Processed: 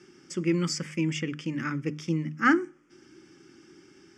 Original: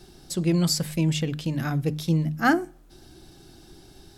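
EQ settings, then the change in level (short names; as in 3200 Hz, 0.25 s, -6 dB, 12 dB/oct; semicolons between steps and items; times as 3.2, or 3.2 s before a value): speaker cabinet 400–5400 Hz, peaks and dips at 450 Hz -7 dB, 660 Hz -8 dB, 1000 Hz -9 dB, 1600 Hz -9 dB, 2700 Hz -5 dB, 3900 Hz -8 dB; fixed phaser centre 1700 Hz, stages 4; +9.0 dB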